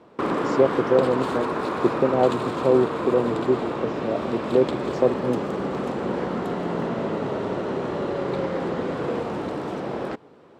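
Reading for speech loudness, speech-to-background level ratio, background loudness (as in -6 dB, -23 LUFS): -24.0 LUFS, 3.5 dB, -27.5 LUFS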